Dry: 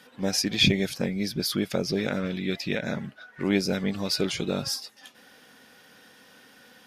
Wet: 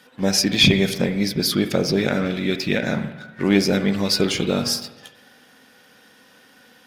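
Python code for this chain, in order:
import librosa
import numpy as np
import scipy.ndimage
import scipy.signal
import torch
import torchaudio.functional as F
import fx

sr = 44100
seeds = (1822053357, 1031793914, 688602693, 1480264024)

y = fx.leveller(x, sr, passes=1)
y = fx.rev_spring(y, sr, rt60_s=1.1, pass_ms=(46, 50), chirp_ms=75, drr_db=9.0)
y = F.gain(torch.from_numpy(y), 3.0).numpy()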